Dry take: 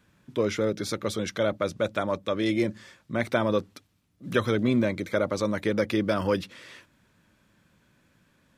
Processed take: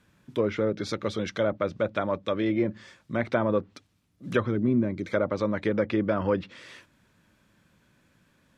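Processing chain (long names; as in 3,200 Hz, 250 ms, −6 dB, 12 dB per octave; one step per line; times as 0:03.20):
gain on a spectral selection 0:04.47–0:05.04, 420–4,400 Hz −8 dB
treble cut that deepens with the level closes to 1,700 Hz, closed at −21 dBFS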